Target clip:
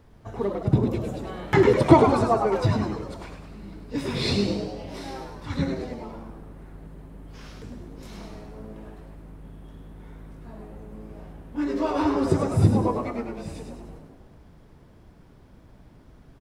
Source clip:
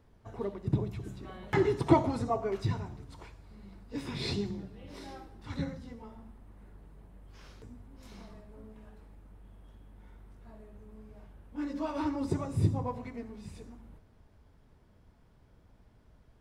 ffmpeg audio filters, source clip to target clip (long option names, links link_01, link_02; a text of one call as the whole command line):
ffmpeg -i in.wav -filter_complex "[0:a]asplit=7[link_01][link_02][link_03][link_04][link_05][link_06][link_07];[link_02]adelay=102,afreqshift=110,volume=-6.5dB[link_08];[link_03]adelay=204,afreqshift=220,volume=-12.2dB[link_09];[link_04]adelay=306,afreqshift=330,volume=-17.9dB[link_10];[link_05]adelay=408,afreqshift=440,volume=-23.5dB[link_11];[link_06]adelay=510,afreqshift=550,volume=-29.2dB[link_12];[link_07]adelay=612,afreqshift=660,volume=-34.9dB[link_13];[link_01][link_08][link_09][link_10][link_11][link_12][link_13]amix=inputs=7:normalize=0,volume=8.5dB" out.wav